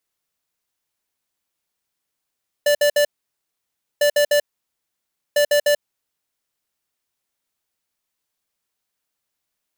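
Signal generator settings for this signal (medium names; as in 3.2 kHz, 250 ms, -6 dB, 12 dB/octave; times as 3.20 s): beep pattern square 585 Hz, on 0.09 s, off 0.06 s, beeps 3, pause 0.96 s, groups 3, -15.5 dBFS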